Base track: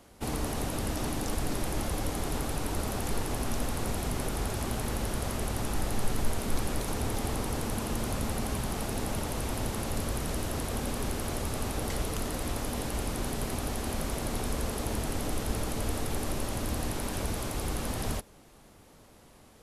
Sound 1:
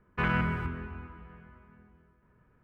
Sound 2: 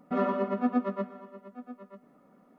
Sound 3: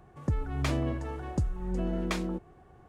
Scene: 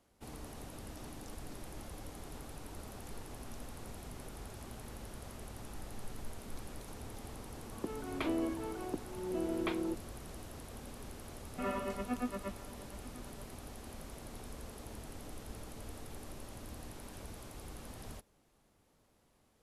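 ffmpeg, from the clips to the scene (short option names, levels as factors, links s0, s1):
-filter_complex "[0:a]volume=0.168[s0];[3:a]highpass=f=280:w=0.5412,highpass=f=280:w=1.3066,equalizer=f=350:t=q:w=4:g=3,equalizer=f=550:t=q:w=4:g=-7,equalizer=f=810:t=q:w=4:g=-4,equalizer=f=1200:t=q:w=4:g=-5,equalizer=f=1800:t=q:w=4:g=-9,equalizer=f=2700:t=q:w=4:g=-4,lowpass=f=3200:w=0.5412,lowpass=f=3200:w=1.3066[s1];[2:a]equalizer=f=2600:t=o:w=0.93:g=13.5[s2];[s1]atrim=end=2.88,asetpts=PTS-STARTPTS,afade=t=in:d=0.004:c=hsin,afade=t=out:st=2.876:d=0.004:c=hsin,adelay=7560[s3];[s2]atrim=end=2.58,asetpts=PTS-STARTPTS,volume=0.299,afade=t=in:d=0.004:c=hsin,afade=t=out:st=2.576:d=0.004:c=hsin,adelay=11470[s4];[s0][s3][s4]amix=inputs=3:normalize=0"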